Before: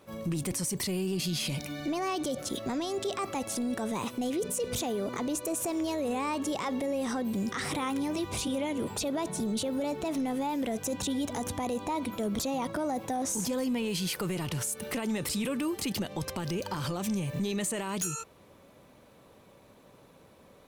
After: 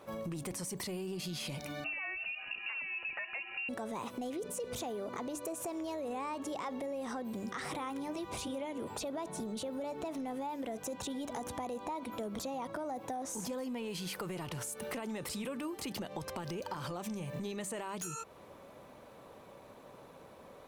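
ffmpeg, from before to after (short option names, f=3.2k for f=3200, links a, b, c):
-filter_complex "[0:a]asettb=1/sr,asplit=3[a][b][c];[a]atrim=end=1.844[d];[b]atrim=start=1.84:end=3.69,asetpts=PTS-STARTPTS,afade=t=in:d=0.004:c=qsin,afade=t=out:st=1.846:d=0.004:c=qsin,lowpass=f=2.6k:t=q:w=0.5098,lowpass=f=2.6k:t=q:w=0.6013,lowpass=f=2.6k:t=q:w=0.9,lowpass=f=2.6k:t=q:w=2.563,afreqshift=-3000[e];[c]atrim=start=3.686[f];[d][e]acrossfade=d=0.004:c1=hsin:c2=qsin[g];[g][f]acrossfade=d=0.004:c1=qsin:c2=hsin,equalizer=f=830:t=o:w=2.4:g=7,bandreject=f=97.08:t=h:w=4,bandreject=f=194.16:t=h:w=4,bandreject=f=291.24:t=h:w=4,acompressor=threshold=-37dB:ratio=4,volume=-1.5dB"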